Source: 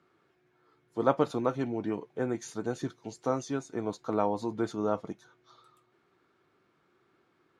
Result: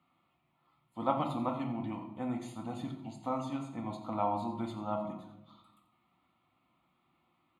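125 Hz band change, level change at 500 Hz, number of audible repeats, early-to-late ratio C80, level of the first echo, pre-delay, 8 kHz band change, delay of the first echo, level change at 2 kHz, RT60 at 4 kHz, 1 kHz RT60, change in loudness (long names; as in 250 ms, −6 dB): −2.5 dB, −8.5 dB, 1, 9.0 dB, −12.5 dB, 4 ms, −12.5 dB, 87 ms, −8.5 dB, 0.55 s, 0.80 s, −4.5 dB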